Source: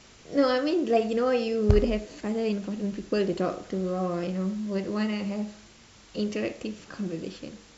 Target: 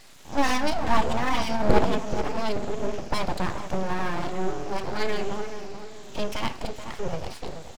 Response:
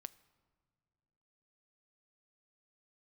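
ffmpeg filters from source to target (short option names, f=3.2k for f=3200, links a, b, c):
-filter_complex "[0:a]afftfilt=real='re*pow(10,8/40*sin(2*PI*(0.97*log(max(b,1)*sr/1024/100)/log(2)-(-1.2)*(pts-256)/sr)))':imag='im*pow(10,8/40*sin(2*PI*(0.97*log(max(b,1)*sr/1024/100)/log(2)-(-1.2)*(pts-256)/sr)))':win_size=1024:overlap=0.75,asplit=2[a][b];[b]adelay=431,lowpass=f=1.4k:p=1,volume=-8.5dB,asplit=2[c][d];[d]adelay=431,lowpass=f=1.4k:p=1,volume=0.42,asplit=2[e][f];[f]adelay=431,lowpass=f=1.4k:p=1,volume=0.42,asplit=2[g][h];[h]adelay=431,lowpass=f=1.4k:p=1,volume=0.42,asplit=2[i][j];[j]adelay=431,lowpass=f=1.4k:p=1,volume=0.42[k];[a][c][e][g][i][k]amix=inputs=6:normalize=0,aeval=exprs='abs(val(0))':c=same,volume=3.5dB"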